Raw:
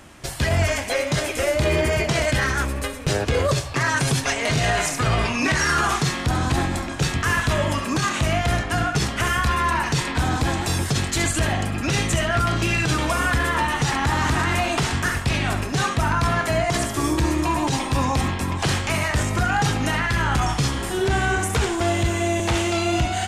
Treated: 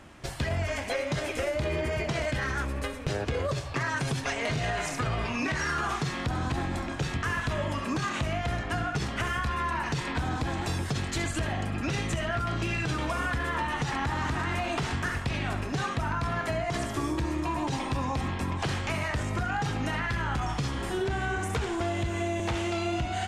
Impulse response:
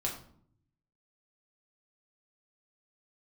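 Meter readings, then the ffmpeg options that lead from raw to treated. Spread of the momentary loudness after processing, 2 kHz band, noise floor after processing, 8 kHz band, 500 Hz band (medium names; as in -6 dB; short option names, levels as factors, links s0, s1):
2 LU, -8.5 dB, -35 dBFS, -13.5 dB, -8.0 dB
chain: -af "lowpass=f=3700:p=1,acompressor=threshold=0.0794:ratio=6,volume=0.631"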